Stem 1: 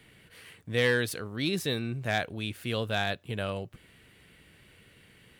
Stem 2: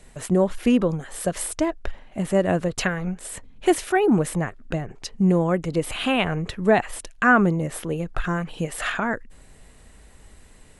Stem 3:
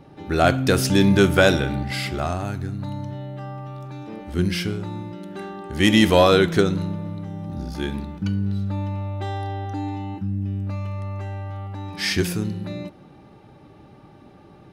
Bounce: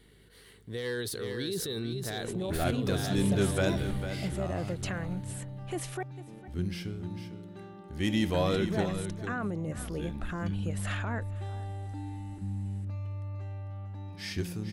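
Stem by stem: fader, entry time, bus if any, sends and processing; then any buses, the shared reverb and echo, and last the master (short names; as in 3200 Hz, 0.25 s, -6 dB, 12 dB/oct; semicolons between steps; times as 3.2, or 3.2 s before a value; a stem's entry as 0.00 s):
-4.5 dB, 0.00 s, bus A, no send, echo send -11 dB, thirty-one-band EQ 400 Hz +10 dB, 630 Hz -4 dB, 2500 Hz -11 dB, 4000 Hz +6 dB, 10000 Hz +3 dB; hum 50 Hz, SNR 27 dB; sustainer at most 33 dB/s
-9.0 dB, 2.05 s, muted 6.03–8.34, bus A, no send, echo send -23.5 dB, dry
-15.0 dB, 2.20 s, no bus, no send, echo send -10 dB, low shelf 190 Hz +7.5 dB
bus A: 0.0 dB, limiter -26 dBFS, peak gain reduction 11.5 dB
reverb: off
echo: echo 0.449 s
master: bell 1400 Hz -2 dB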